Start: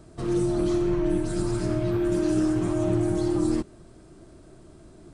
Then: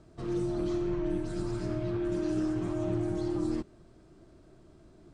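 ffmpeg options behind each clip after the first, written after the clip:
-af "lowpass=6.2k,volume=-7dB"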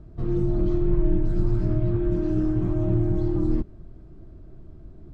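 -af "aemphasis=mode=reproduction:type=riaa"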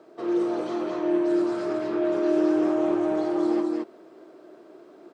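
-af "highpass=f=390:w=0.5412,highpass=f=390:w=1.3066,aecho=1:1:43.73|215.7:0.316|0.794,volume=9dB"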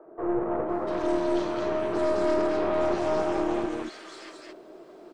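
-filter_complex "[0:a]acrossover=split=290|1500[a][b][c];[a]adelay=50[d];[c]adelay=690[e];[d][b][e]amix=inputs=3:normalize=0,aeval=exprs='(tanh(17.8*val(0)+0.65)-tanh(0.65))/17.8':c=same,volume=7dB"

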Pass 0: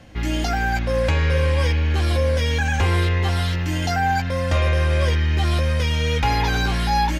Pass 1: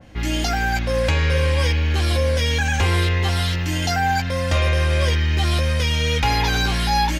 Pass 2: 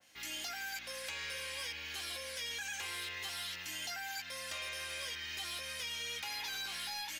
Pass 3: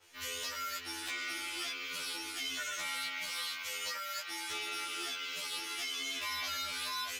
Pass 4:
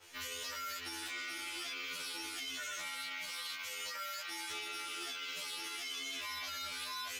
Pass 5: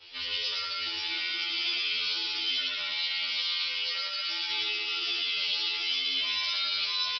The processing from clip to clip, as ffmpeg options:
-af "adynamicequalizer=threshold=0.0112:dfrequency=2200:dqfactor=0.7:tfrequency=2200:tqfactor=0.7:attack=5:release=100:ratio=0.375:range=2.5:mode=boostabove:tftype=highshelf"
-filter_complex "[0:a]aderivative,acrossover=split=1500|3400[a][b][c];[a]acompressor=threshold=-45dB:ratio=4[d];[b]acompressor=threshold=-40dB:ratio=4[e];[c]acompressor=threshold=-44dB:ratio=4[f];[d][e][f]amix=inputs=3:normalize=0,aeval=exprs='0.0708*(cos(1*acos(clip(val(0)/0.0708,-1,1)))-cos(1*PI/2))+0.0126*(cos(5*acos(clip(val(0)/0.0708,-1,1)))-cos(5*PI/2))':c=same,volume=-7dB"
-af "aeval=exprs='val(0)*sin(2*PI*200*n/s)':c=same,afftfilt=real='re*2*eq(mod(b,4),0)':imag='im*2*eq(mod(b,4),0)':win_size=2048:overlap=0.75,volume=8dB"
-af "alimiter=level_in=14.5dB:limit=-24dB:level=0:latency=1:release=79,volume=-14.5dB,volume=4.5dB"
-af "aexciter=amount=4.1:drive=5.6:freq=2.5k,aecho=1:1:110.8|174.9:0.891|0.501,aresample=11025,aresample=44100"

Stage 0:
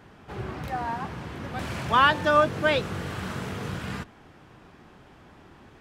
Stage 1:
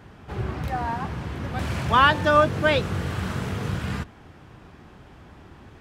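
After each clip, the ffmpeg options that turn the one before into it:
-af "equalizer=f=66:w=0.64:g=7.5,volume=2dB"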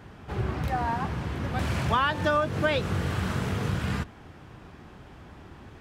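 -af "acompressor=threshold=-21dB:ratio=6"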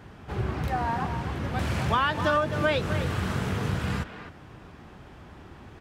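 -filter_complex "[0:a]asplit=2[a][b];[b]adelay=260,highpass=300,lowpass=3.4k,asoftclip=type=hard:threshold=-20.5dB,volume=-8dB[c];[a][c]amix=inputs=2:normalize=0"

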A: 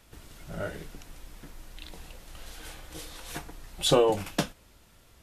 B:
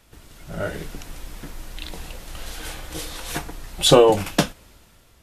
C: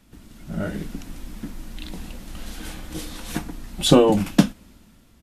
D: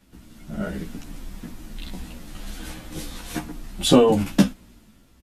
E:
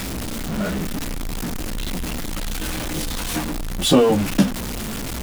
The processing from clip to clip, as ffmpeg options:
-af "dynaudnorm=f=140:g=9:m=8dB,volume=2dB"
-af "firequalizer=gain_entry='entry(140,0);entry(210,11);entry(420,-4)':delay=0.05:min_phase=1"
-filter_complex "[0:a]asplit=2[a][b];[b]adelay=11.8,afreqshift=-1.6[c];[a][c]amix=inputs=2:normalize=1,volume=2dB"
-af "aeval=exprs='val(0)+0.5*0.0891*sgn(val(0))':c=same,volume=-1dB"

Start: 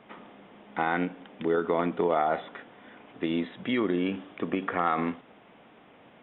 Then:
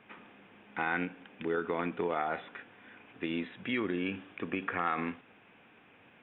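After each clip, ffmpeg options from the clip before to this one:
-af "equalizer=f=100:t=o:w=0.33:g=8,equalizer=f=630:t=o:w=0.33:g=-5,equalizer=f=1.6k:t=o:w=0.33:g=7,equalizer=f=2.5k:t=o:w=0.33:g=10,volume=-6.5dB"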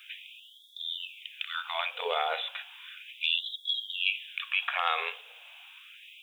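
-af "aexciter=amount=11.8:drive=3.4:freq=2.8k,bandreject=f=50:t=h:w=6,bandreject=f=100:t=h:w=6,bandreject=f=150:t=h:w=6,bandreject=f=200:t=h:w=6,bandreject=f=250:t=h:w=6,bandreject=f=300:t=h:w=6,bandreject=f=350:t=h:w=6,afftfilt=real='re*gte(b*sr/1024,410*pow(3300/410,0.5+0.5*sin(2*PI*0.34*pts/sr)))':imag='im*gte(b*sr/1024,410*pow(3300/410,0.5+0.5*sin(2*PI*0.34*pts/sr)))':win_size=1024:overlap=0.75,volume=3dB"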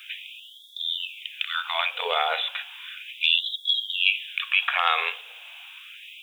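-af "lowshelf=f=480:g=-10.5,volume=7.5dB"

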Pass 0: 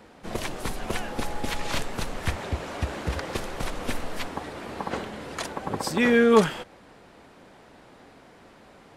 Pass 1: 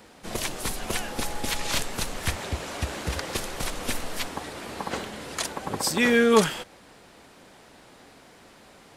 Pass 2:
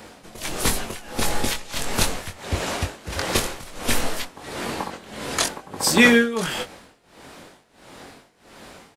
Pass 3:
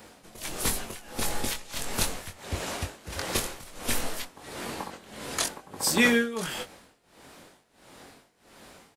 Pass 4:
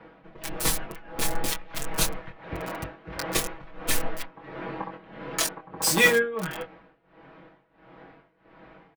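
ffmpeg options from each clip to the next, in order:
-af "highshelf=f=3.3k:g=11,volume=-1.5dB"
-filter_complex "[0:a]tremolo=f=1.5:d=0.9,asplit=2[a][b];[b]adelay=22,volume=-5.5dB[c];[a][c]amix=inputs=2:normalize=0,volume=8dB"
-af "highshelf=f=8.4k:g=6.5,volume=-7.5dB"
-filter_complex "[0:a]acrossover=split=230|2500[a][b][c];[c]acrusher=bits=4:mix=0:aa=0.000001[d];[a][b][d]amix=inputs=3:normalize=0,aecho=1:1:6.2:0.8"

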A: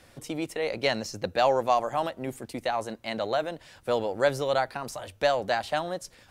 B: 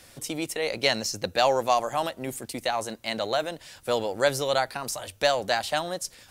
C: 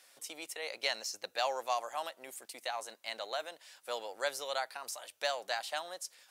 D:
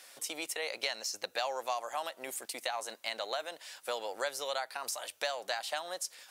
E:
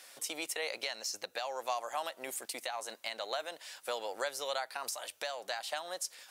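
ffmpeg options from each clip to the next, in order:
-af "highshelf=f=3.4k:g=11.5"
-af "highpass=650,volume=-9dB"
-af "acompressor=threshold=-41dB:ratio=3,volume=7.5dB"
-af "alimiter=limit=-22dB:level=0:latency=1:release=317"

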